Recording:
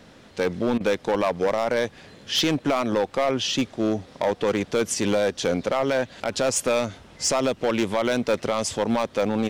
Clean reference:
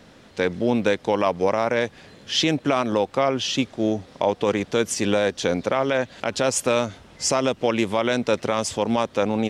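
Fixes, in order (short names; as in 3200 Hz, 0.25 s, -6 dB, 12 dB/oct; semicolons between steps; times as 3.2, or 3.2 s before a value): clip repair -16 dBFS; interpolate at 0.78, 23 ms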